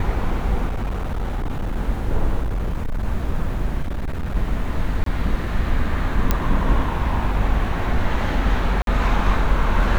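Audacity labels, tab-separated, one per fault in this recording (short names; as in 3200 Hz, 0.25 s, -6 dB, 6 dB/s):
0.670000	1.770000	clipped -20 dBFS
2.420000	3.060000	clipped -19 dBFS
3.820000	4.360000	clipped -21 dBFS
5.040000	5.060000	gap 23 ms
6.310000	6.310000	pop -4 dBFS
8.820000	8.870000	gap 52 ms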